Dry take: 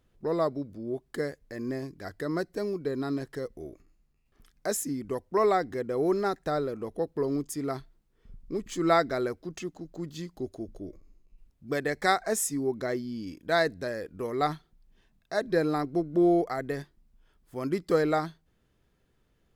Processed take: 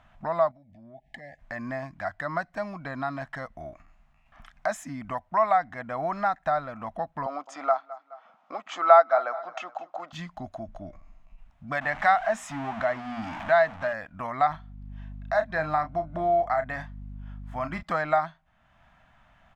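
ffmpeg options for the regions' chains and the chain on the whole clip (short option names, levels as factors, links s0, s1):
-filter_complex "[0:a]asettb=1/sr,asplit=3[s0][s1][s2];[s0]atrim=end=0.514[s3];[s1]atrim=start=0.51:end=1.39,asetpts=PTS-STARTPTS,afade=t=in:d=0.004:c=qsin,afade=t=out:st=0.876:d=0.004:c=qsin,asuperstop=centerf=1200:order=20:qfactor=1.4,highshelf=f=6400:g=-8,acompressor=threshold=0.00282:ratio=3:attack=3.2:release=140:knee=1:detection=peak[s4];[s2]atrim=start=1.386[s5];[s3][s4]acrossfade=d=0.004:c1=hsin:c2=qsin[s6];[s6][s5]acrossfade=d=0.004:c1=qsin:c2=hsin,asettb=1/sr,asplit=3[s7][s8][s9];[s7]atrim=end=7.264[s10];[s8]atrim=start=7.26:end=10.13,asetpts=PTS-STARTPTS,afade=t=in:d=0.004:c=qsin,afade=t=out:st=2.866:d=0.004:c=qsin,highpass=f=340:w=0.5412,highpass=f=340:w=1.3066,equalizer=f=510:t=q:w=4:g=9,equalizer=f=770:t=q:w=4:g=9,equalizer=f=1300:t=q:w=4:g=9,equalizer=f=1800:t=q:w=4:g=-5,lowpass=f=6700:w=0.5412,lowpass=f=6700:w=1.3066,aecho=1:1:211|422:0.0944|0.0302,atrim=end_sample=126567[s11];[s9]atrim=start=10.126[s12];[s10][s11]acrossfade=d=0.004:c1=hsin:c2=qsin[s13];[s13][s12]acrossfade=d=0.004:c1=qsin:c2=hsin,asettb=1/sr,asplit=3[s14][s15][s16];[s14]atrim=end=11.814[s17];[s15]atrim=start=11.81:end=13.93,asetpts=PTS-STARTPTS,afade=t=in:d=0.004:c=qsin,afade=t=out:st=2.116:d=0.004:c=qsin,aeval=exprs='val(0)+0.5*0.0168*sgn(val(0))':c=same,highshelf=f=8600:g=-10,bandreject=f=60:t=h:w=6,bandreject=f=120:t=h:w=6,bandreject=f=180:t=h:w=6,bandreject=f=240:t=h:w=6,bandreject=f=300:t=h:w=6,bandreject=f=360:t=h:w=6,bandreject=f=420:t=h:w=6,bandreject=f=480:t=h:w=6,bandreject=f=540:t=h:w=6[s18];[s16]atrim=start=13.926[s19];[s17][s18]acrossfade=d=0.004:c1=hsin:c2=qsin[s20];[s20][s19]acrossfade=d=0.004:c1=qsin:c2=hsin,asettb=1/sr,asplit=3[s21][s22][s23];[s21]atrim=end=14.504[s24];[s22]atrim=start=14.5:end=17.83,asetpts=PTS-STARTPTS,afade=t=in:d=0.004:c=qsin,afade=t=out:st=3.326:d=0.004:c=qsin,asplit=2[s25][s26];[s26]adelay=32,volume=0.316[s27];[s25][s27]amix=inputs=2:normalize=0,atrim=end_sample=146853,aeval=exprs='val(0)+0.00891*(sin(2*PI*50*n/s)+sin(2*PI*2*50*n/s)/2+sin(2*PI*3*50*n/s)/3+sin(2*PI*4*50*n/s)/4+sin(2*PI*5*50*n/s)/5)':c=same[s28];[s23]atrim=start=17.826[s29];[s24][s28]acrossfade=d=0.004:c1=hsin:c2=qsin[s30];[s30][s29]acrossfade=d=0.004:c1=qsin:c2=hsin,firequalizer=gain_entry='entry(230,0);entry(420,-23);entry(640,13);entry(11000,-15)':delay=0.05:min_phase=1,acompressor=threshold=0.002:ratio=1.5,equalizer=f=4600:t=o:w=0.65:g=-8,volume=2.51"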